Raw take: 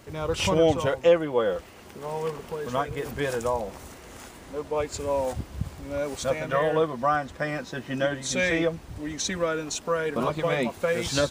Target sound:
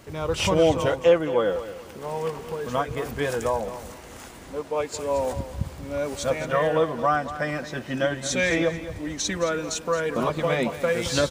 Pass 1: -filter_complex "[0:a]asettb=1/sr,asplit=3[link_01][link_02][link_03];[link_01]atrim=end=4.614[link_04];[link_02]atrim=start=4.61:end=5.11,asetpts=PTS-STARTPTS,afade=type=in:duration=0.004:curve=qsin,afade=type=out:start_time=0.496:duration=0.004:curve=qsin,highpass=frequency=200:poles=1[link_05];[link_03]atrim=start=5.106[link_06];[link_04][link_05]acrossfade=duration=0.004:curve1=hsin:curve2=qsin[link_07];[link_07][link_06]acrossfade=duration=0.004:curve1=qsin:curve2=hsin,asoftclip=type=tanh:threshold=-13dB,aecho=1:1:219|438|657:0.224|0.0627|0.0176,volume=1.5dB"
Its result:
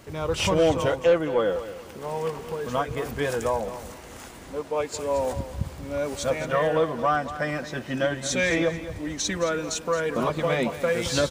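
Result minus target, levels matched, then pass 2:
soft clipping: distortion +20 dB
-filter_complex "[0:a]asettb=1/sr,asplit=3[link_01][link_02][link_03];[link_01]atrim=end=4.614[link_04];[link_02]atrim=start=4.61:end=5.11,asetpts=PTS-STARTPTS,afade=type=in:duration=0.004:curve=qsin,afade=type=out:start_time=0.496:duration=0.004:curve=qsin,highpass=frequency=200:poles=1[link_05];[link_03]atrim=start=5.106[link_06];[link_04][link_05]acrossfade=duration=0.004:curve1=hsin:curve2=qsin[link_07];[link_07][link_06]acrossfade=duration=0.004:curve1=qsin:curve2=hsin,asoftclip=type=tanh:threshold=-1.5dB,aecho=1:1:219|438|657:0.224|0.0627|0.0176,volume=1.5dB"

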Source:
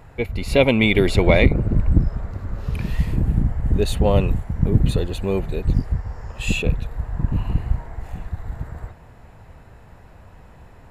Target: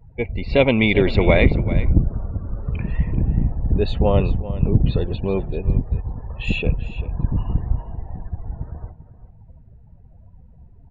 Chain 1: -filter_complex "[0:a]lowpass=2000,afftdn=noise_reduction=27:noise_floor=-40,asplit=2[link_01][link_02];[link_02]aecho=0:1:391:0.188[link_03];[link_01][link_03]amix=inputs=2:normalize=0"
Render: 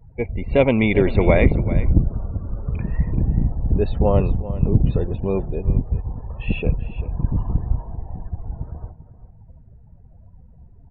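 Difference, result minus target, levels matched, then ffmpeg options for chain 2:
4,000 Hz band −8.5 dB
-filter_complex "[0:a]lowpass=4100,afftdn=noise_reduction=27:noise_floor=-40,asplit=2[link_01][link_02];[link_02]aecho=0:1:391:0.188[link_03];[link_01][link_03]amix=inputs=2:normalize=0"

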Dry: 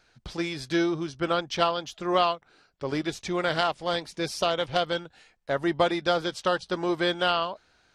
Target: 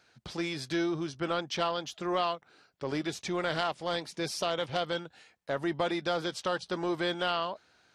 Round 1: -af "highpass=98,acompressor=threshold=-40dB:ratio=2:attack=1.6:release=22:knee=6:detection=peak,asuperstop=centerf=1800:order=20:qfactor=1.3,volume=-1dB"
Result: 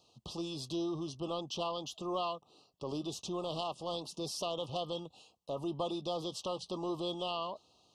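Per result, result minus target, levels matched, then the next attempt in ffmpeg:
2,000 Hz band −13.0 dB; downward compressor: peak gain reduction +5.5 dB
-af "highpass=98,acompressor=threshold=-40dB:ratio=2:attack=1.6:release=22:knee=6:detection=peak,volume=-1dB"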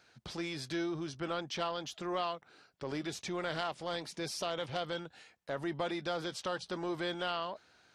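downward compressor: peak gain reduction +5.5 dB
-af "highpass=98,acompressor=threshold=-29dB:ratio=2:attack=1.6:release=22:knee=6:detection=peak,volume=-1dB"

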